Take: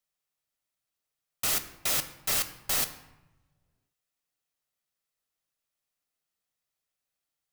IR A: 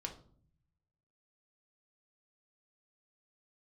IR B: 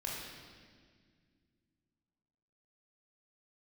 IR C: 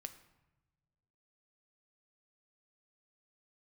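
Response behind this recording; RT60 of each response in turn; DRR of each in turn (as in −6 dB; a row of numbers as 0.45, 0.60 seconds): C; 0.55 s, 1.9 s, non-exponential decay; 2.0, −4.0, 8.5 decibels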